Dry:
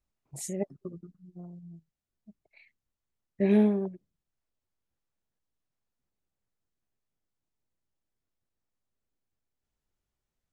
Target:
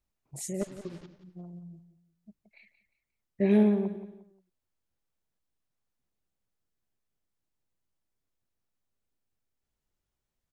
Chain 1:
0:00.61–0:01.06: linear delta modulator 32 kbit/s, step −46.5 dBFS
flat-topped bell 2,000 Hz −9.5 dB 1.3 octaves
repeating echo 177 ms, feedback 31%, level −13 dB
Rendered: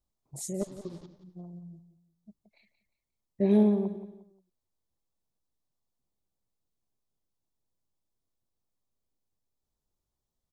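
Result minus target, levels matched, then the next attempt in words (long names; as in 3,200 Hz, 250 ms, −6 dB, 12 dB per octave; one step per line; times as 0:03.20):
2,000 Hz band −9.5 dB
0:00.61–0:01.06: linear delta modulator 32 kbit/s, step −46.5 dBFS
repeating echo 177 ms, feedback 31%, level −13 dB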